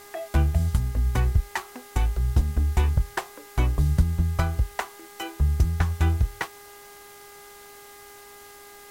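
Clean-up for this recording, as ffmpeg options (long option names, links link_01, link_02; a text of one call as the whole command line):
ffmpeg -i in.wav -af "bandreject=frequency=407.2:width_type=h:width=4,bandreject=frequency=814.4:width_type=h:width=4,bandreject=frequency=1221.6:width_type=h:width=4,bandreject=frequency=1628.8:width_type=h:width=4,bandreject=frequency=2036:width_type=h:width=4,afftdn=noise_reduction=22:noise_floor=-47" out.wav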